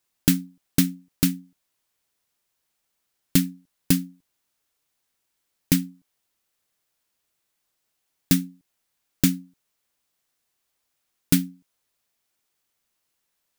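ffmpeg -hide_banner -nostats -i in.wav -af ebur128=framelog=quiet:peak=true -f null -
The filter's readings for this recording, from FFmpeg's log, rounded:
Integrated loudness:
  I:         -24.3 LUFS
  Threshold: -35.7 LUFS
Loudness range:
  LRA:         5.1 LU
  Threshold: -50.1 LUFS
  LRA low:   -33.2 LUFS
  LRA high:  -28.1 LUFS
True peak:
  Peak:       -2.6 dBFS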